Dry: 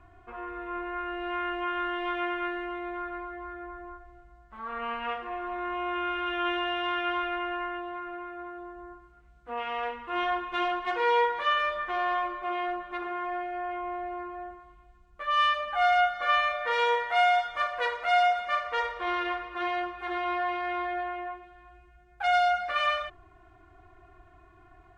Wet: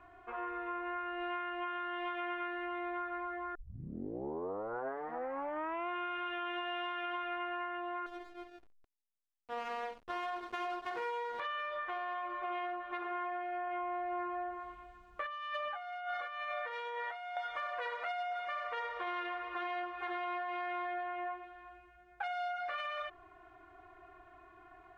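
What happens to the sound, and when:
3.55 s: tape start 2.34 s
8.06–11.40 s: hysteresis with a dead band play -30 dBFS
13.67–17.37 s: compressor with a negative ratio -36 dBFS
whole clip: tone controls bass -13 dB, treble -7 dB; peak limiter -24.5 dBFS; compression, threshold -37 dBFS; trim +1 dB

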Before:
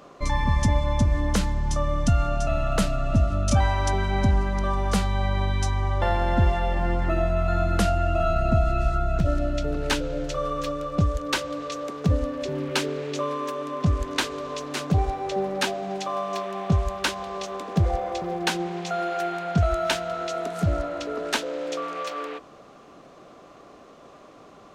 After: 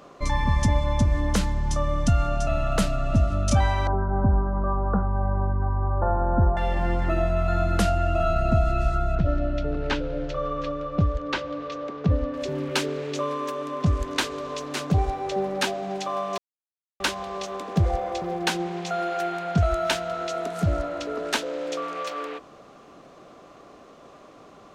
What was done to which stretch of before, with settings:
3.87–6.57 s: steep low-pass 1.5 kHz 72 dB/octave
9.15–12.34 s: distance through air 190 m
16.38–17.00 s: mute

